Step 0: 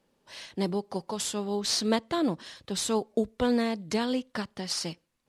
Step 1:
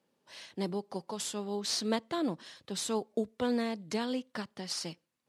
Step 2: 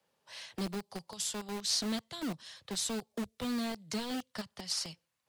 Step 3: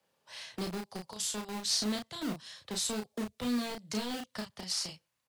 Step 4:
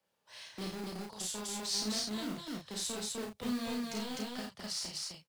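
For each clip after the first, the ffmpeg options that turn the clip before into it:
-af "highpass=120,volume=0.562"
-filter_complex "[0:a]acrossover=split=220|3000[s0][s1][s2];[s1]acompressor=threshold=0.00355:ratio=4[s3];[s0][s3][s2]amix=inputs=3:normalize=0,acrossover=split=170|440|1600[s4][s5][s6][s7];[s5]acrusher=bits=6:mix=0:aa=0.000001[s8];[s4][s8][s6][s7]amix=inputs=4:normalize=0,volume=1.33"
-filter_complex "[0:a]asplit=2[s0][s1];[s1]adelay=33,volume=0.596[s2];[s0][s2]amix=inputs=2:normalize=0"
-filter_complex "[0:a]asplit=2[s0][s1];[s1]acrusher=bits=2:mode=log:mix=0:aa=0.000001,volume=0.316[s2];[s0][s2]amix=inputs=2:normalize=0,aecho=1:1:52.48|253.6:0.631|0.891,volume=0.398"

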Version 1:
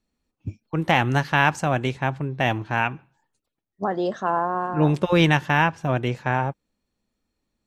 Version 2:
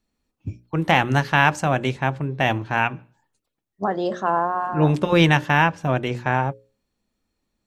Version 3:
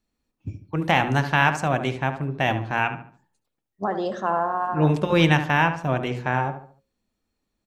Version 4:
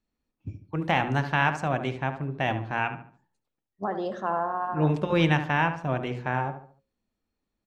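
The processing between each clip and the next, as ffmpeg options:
-af "bandreject=f=60:t=h:w=6,bandreject=f=120:t=h:w=6,bandreject=f=180:t=h:w=6,bandreject=f=240:t=h:w=6,bandreject=f=300:t=h:w=6,bandreject=f=360:t=h:w=6,bandreject=f=420:t=h:w=6,bandreject=f=480:t=h:w=6,bandreject=f=540:t=h:w=6,bandreject=f=600:t=h:w=6,volume=1.26"
-filter_complex "[0:a]asplit=2[s0][s1];[s1]adelay=72,lowpass=f=2200:p=1,volume=0.355,asplit=2[s2][s3];[s3]adelay=72,lowpass=f=2200:p=1,volume=0.39,asplit=2[s4][s5];[s5]adelay=72,lowpass=f=2200:p=1,volume=0.39,asplit=2[s6][s7];[s7]adelay=72,lowpass=f=2200:p=1,volume=0.39[s8];[s0][s2][s4][s6][s8]amix=inputs=5:normalize=0,volume=0.75"
-af "lowpass=f=4000:p=1,volume=0.631"

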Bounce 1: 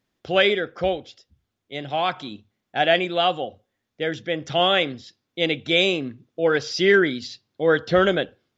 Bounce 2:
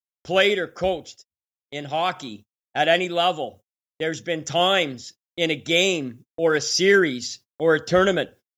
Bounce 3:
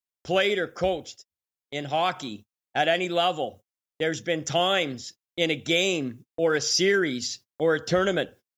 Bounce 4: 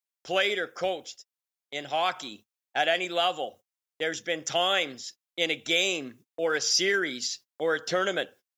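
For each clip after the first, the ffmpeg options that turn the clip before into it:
-af "aexciter=amount=7.4:drive=2.8:freq=5700,agate=range=0.00891:threshold=0.00708:ratio=16:detection=peak"
-af "acompressor=threshold=0.112:ratio=4"
-af "highpass=f=660:p=1"

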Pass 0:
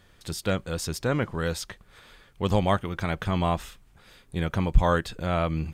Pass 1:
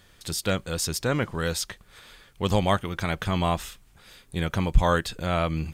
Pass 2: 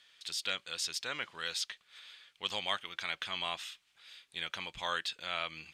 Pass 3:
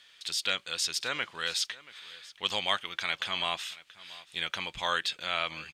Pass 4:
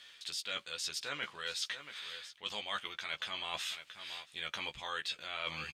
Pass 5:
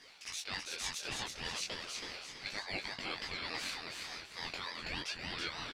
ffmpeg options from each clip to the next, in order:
-af "highshelf=f=2700:g=7"
-af "bandpass=f=3200:t=q:w=1.4:csg=0"
-af "aecho=1:1:680:0.1,volume=1.88"
-filter_complex "[0:a]areverse,acompressor=threshold=0.0126:ratio=6,areverse,asplit=2[s0][s1];[s1]adelay=14,volume=0.562[s2];[s0][s2]amix=inputs=2:normalize=0,volume=1.12"
-af "flanger=delay=19:depth=6.1:speed=0.39,aecho=1:1:327|654|981|1308:0.631|0.189|0.0568|0.017,aeval=exprs='val(0)*sin(2*PI*1200*n/s+1200*0.25/3.4*sin(2*PI*3.4*n/s))':c=same,volume=1.58"

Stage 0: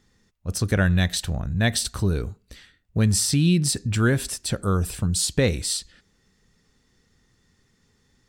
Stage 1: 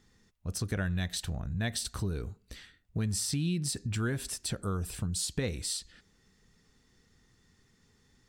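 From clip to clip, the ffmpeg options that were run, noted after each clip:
-af "bandreject=f=550:w=15,acompressor=threshold=0.02:ratio=2,volume=0.794"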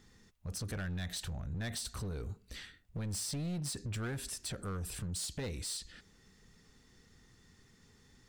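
-af "asoftclip=type=hard:threshold=0.0299,alimiter=level_in=4.73:limit=0.0631:level=0:latency=1:release=22,volume=0.211,volume=1.41"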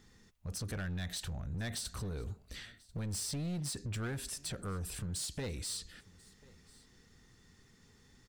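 -af "aecho=1:1:1040:0.0631"

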